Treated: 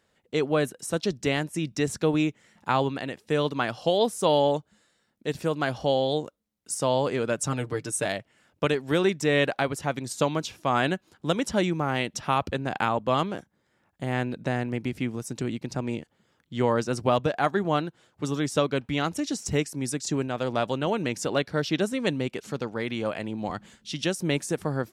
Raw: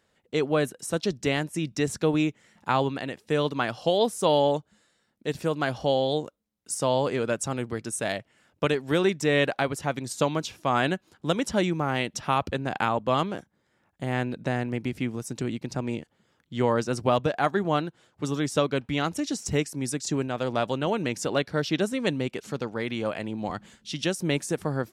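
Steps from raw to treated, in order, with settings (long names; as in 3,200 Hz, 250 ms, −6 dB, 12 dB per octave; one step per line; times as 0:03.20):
0:07.37–0:08.06: comb filter 6.7 ms, depth 70%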